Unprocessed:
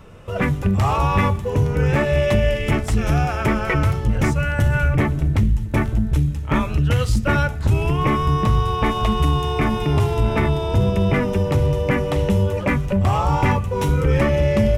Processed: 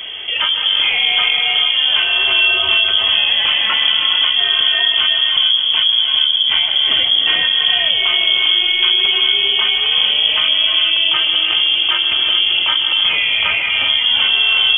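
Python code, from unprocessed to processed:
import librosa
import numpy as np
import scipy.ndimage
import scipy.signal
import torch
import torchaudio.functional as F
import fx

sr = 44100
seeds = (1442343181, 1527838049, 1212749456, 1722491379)

y = fx.highpass(x, sr, hz=300.0, slope=12, at=(13.09, 13.69))
y = fx.echo_split(y, sr, split_hz=780.0, low_ms=785, high_ms=153, feedback_pct=52, wet_db=-13.0)
y = fx.rev_gated(y, sr, seeds[0], gate_ms=460, shape='rising', drr_db=2.0)
y = fx.freq_invert(y, sr, carrier_hz=3300)
y = fx.env_flatten(y, sr, amount_pct=50)
y = y * 10.0 ** (-2.0 / 20.0)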